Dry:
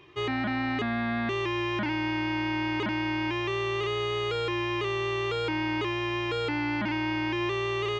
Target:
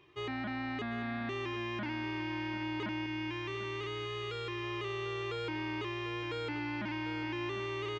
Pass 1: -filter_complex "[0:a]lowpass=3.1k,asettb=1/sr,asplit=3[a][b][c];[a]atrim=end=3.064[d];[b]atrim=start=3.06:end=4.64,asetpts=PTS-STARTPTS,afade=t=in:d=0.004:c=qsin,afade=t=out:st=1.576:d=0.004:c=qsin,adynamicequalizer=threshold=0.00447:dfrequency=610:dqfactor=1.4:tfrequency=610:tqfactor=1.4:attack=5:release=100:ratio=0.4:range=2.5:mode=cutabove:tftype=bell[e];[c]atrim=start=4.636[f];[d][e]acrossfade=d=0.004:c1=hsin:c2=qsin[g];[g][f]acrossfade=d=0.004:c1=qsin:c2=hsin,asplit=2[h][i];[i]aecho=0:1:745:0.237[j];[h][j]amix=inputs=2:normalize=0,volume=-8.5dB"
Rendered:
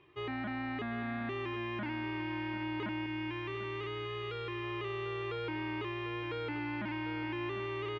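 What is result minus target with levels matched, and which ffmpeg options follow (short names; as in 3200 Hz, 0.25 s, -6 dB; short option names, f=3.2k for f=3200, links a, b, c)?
4000 Hz band -2.5 dB
-filter_complex "[0:a]asettb=1/sr,asplit=3[a][b][c];[a]atrim=end=3.064[d];[b]atrim=start=3.06:end=4.64,asetpts=PTS-STARTPTS,afade=t=in:d=0.004:c=qsin,afade=t=out:st=1.576:d=0.004:c=qsin,adynamicequalizer=threshold=0.00447:dfrequency=610:dqfactor=1.4:tfrequency=610:tqfactor=1.4:attack=5:release=100:ratio=0.4:range=2.5:mode=cutabove:tftype=bell[e];[c]atrim=start=4.636[f];[d][e]acrossfade=d=0.004:c1=hsin:c2=qsin[g];[g][f]acrossfade=d=0.004:c1=qsin:c2=hsin,asplit=2[h][i];[i]aecho=0:1:745:0.237[j];[h][j]amix=inputs=2:normalize=0,volume=-8.5dB"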